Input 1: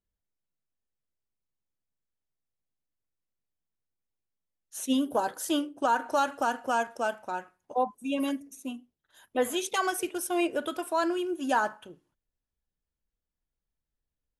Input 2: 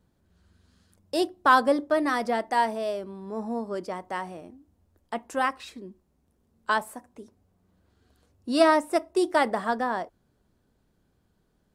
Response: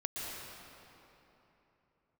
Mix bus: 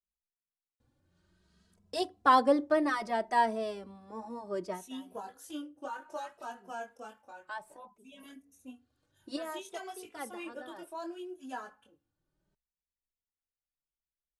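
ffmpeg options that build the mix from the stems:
-filter_complex "[0:a]flanger=delay=19:depth=4.8:speed=0.79,volume=-9dB,asplit=2[a][b];[1:a]lowpass=10k,adelay=800,volume=-2dB[c];[b]apad=whole_len=553249[d];[c][d]sidechaincompress=threshold=-54dB:ratio=6:attack=16:release=829[e];[a][e]amix=inputs=2:normalize=0,asplit=2[f][g];[g]adelay=2.7,afreqshift=0.63[h];[f][h]amix=inputs=2:normalize=1"

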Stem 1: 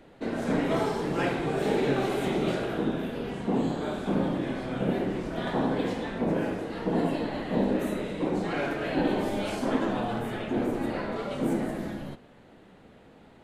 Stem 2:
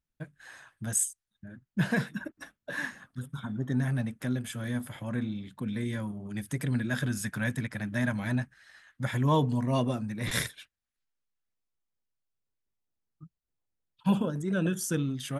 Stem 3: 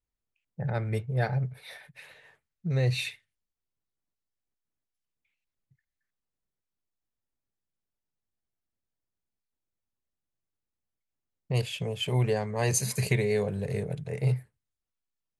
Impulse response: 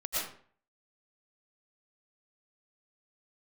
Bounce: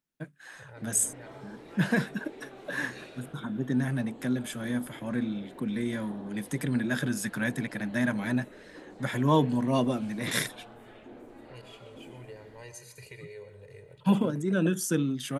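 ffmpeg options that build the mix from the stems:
-filter_complex "[0:a]adelay=550,volume=-15dB[a];[1:a]highpass=f=140:w=0.5412,highpass=f=140:w=1.3066,equalizer=f=330:t=o:w=0.77:g=3.5,volume=1.5dB[b];[2:a]equalizer=f=2.1k:t=o:w=1.9:g=5,aecho=1:1:2.1:0.65,volume=-19dB,asplit=2[c][d];[d]volume=-16.5dB[e];[a][c]amix=inputs=2:normalize=0,equalizer=f=170:t=o:w=0.72:g=-8.5,acompressor=threshold=-47dB:ratio=2,volume=0dB[f];[3:a]atrim=start_sample=2205[g];[e][g]afir=irnorm=-1:irlink=0[h];[b][f][h]amix=inputs=3:normalize=0"

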